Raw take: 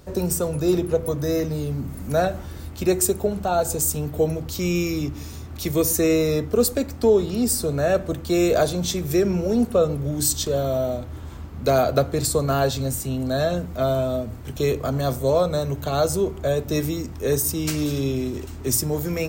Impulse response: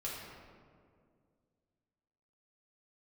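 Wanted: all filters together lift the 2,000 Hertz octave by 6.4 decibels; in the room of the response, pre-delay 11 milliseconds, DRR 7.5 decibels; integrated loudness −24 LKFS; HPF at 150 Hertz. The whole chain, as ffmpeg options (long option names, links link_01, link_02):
-filter_complex "[0:a]highpass=150,equalizer=frequency=2000:width_type=o:gain=8.5,asplit=2[link_01][link_02];[1:a]atrim=start_sample=2205,adelay=11[link_03];[link_02][link_03]afir=irnorm=-1:irlink=0,volume=-9dB[link_04];[link_01][link_04]amix=inputs=2:normalize=0,volume=-2dB"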